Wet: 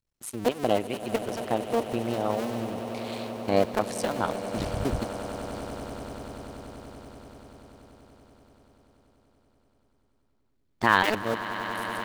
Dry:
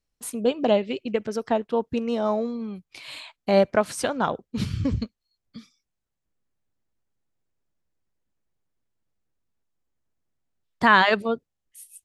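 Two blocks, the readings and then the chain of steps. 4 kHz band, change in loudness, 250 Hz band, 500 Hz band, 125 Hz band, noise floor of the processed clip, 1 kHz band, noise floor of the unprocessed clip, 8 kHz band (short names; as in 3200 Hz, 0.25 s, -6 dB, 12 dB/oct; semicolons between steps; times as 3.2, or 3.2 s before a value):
-3.0 dB, -5.0 dB, -3.5 dB, -3.5 dB, -2.0 dB, -70 dBFS, -3.0 dB, -82 dBFS, -1.5 dB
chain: cycle switcher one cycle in 2, muted; swelling echo 96 ms, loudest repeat 8, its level -16 dB; gain -1.5 dB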